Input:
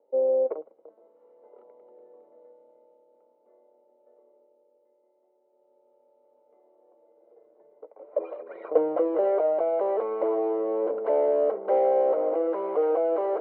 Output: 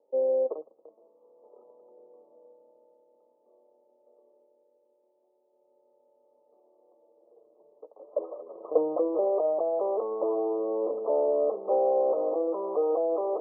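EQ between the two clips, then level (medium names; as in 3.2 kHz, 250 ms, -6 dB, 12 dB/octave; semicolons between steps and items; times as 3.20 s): brick-wall FIR low-pass 1.3 kHz; distance through air 460 m; -1.0 dB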